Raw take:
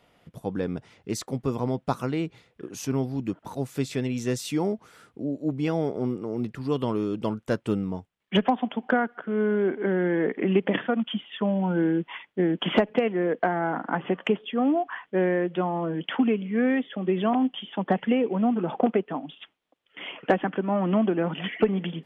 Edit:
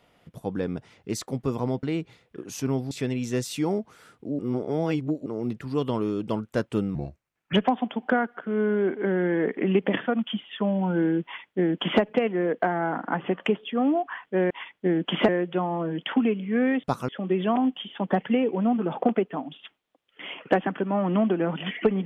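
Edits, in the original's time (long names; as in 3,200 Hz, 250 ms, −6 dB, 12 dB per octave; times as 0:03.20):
0:01.83–0:02.08: move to 0:16.86
0:03.16–0:03.85: remove
0:05.33–0:06.20: reverse
0:07.89–0:08.34: play speed 77%
0:12.04–0:12.82: duplicate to 0:15.31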